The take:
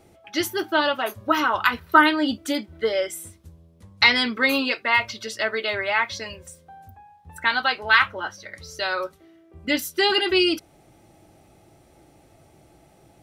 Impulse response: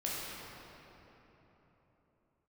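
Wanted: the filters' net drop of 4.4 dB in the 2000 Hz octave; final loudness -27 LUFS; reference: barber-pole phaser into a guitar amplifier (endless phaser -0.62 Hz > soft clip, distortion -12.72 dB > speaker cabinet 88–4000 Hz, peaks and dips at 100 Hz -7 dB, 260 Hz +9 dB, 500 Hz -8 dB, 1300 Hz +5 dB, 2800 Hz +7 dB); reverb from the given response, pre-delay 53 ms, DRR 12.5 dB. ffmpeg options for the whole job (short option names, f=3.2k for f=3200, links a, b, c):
-filter_complex "[0:a]equalizer=f=2k:t=o:g=-9,asplit=2[a][b];[1:a]atrim=start_sample=2205,adelay=53[c];[b][c]afir=irnorm=-1:irlink=0,volume=-17dB[d];[a][d]amix=inputs=2:normalize=0,asplit=2[e][f];[f]afreqshift=-0.62[g];[e][g]amix=inputs=2:normalize=1,asoftclip=threshold=-19dB,highpass=88,equalizer=f=100:t=q:w=4:g=-7,equalizer=f=260:t=q:w=4:g=9,equalizer=f=500:t=q:w=4:g=-8,equalizer=f=1.3k:t=q:w=4:g=5,equalizer=f=2.8k:t=q:w=4:g=7,lowpass=f=4k:w=0.5412,lowpass=f=4k:w=1.3066,volume=1.5dB"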